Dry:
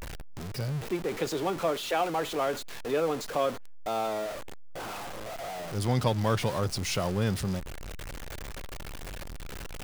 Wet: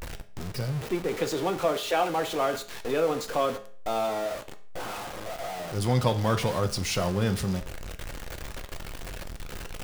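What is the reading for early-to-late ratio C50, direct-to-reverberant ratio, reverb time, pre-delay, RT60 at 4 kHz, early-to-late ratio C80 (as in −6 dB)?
14.0 dB, 8.0 dB, 0.50 s, 5 ms, 0.45 s, 18.0 dB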